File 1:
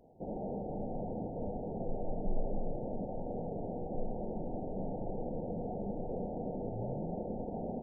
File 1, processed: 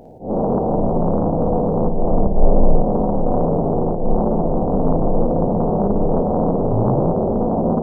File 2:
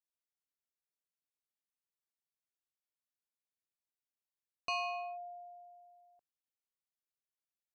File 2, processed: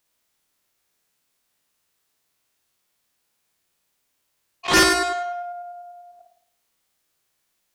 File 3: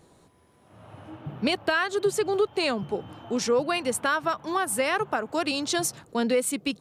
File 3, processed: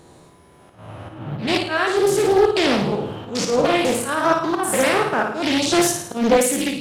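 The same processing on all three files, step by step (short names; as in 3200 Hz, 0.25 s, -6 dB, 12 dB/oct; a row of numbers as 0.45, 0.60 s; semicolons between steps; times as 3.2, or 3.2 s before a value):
stepped spectrum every 0.1 s; auto swell 0.142 s; flutter echo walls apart 9.4 m, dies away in 0.63 s; Doppler distortion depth 0.5 ms; match loudness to -19 LUFS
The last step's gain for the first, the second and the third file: +20.5, +23.0, +10.5 dB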